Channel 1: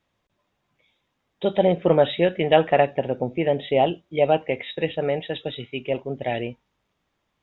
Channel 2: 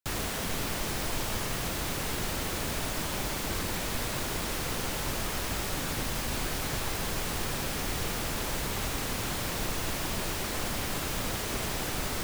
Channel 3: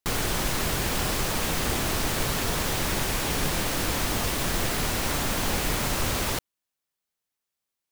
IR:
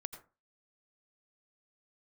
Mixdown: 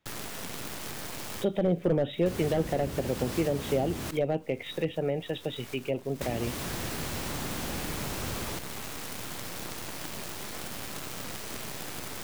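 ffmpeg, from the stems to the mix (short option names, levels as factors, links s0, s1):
-filter_complex "[0:a]asoftclip=type=hard:threshold=0.251,volume=0.794,asplit=2[s0][s1];[1:a]highpass=100,acrusher=bits=5:dc=4:mix=0:aa=0.000001,volume=0.891[s2];[2:a]highpass=62,adelay=2200,volume=0.531,asplit=3[s3][s4][s5];[s3]atrim=end=4.11,asetpts=PTS-STARTPTS,afade=t=out:st=4.106:d=0.004:c=hsin[s6];[s4]atrim=start=4.11:end=6.21,asetpts=PTS-STARTPTS,volume=0[s7];[s5]atrim=start=6.21,asetpts=PTS-STARTPTS,afade=t=in:d=0.004:c=hsin[s8];[s6][s7][s8]concat=n=3:v=0:a=1[s9];[s1]apad=whole_len=539516[s10];[s2][s10]sidechaincompress=threshold=0.0126:ratio=8:attack=7.2:release=345[s11];[s0][s11][s9]amix=inputs=3:normalize=0,acrossover=split=430[s12][s13];[s13]acompressor=threshold=0.02:ratio=6[s14];[s12][s14]amix=inputs=2:normalize=0"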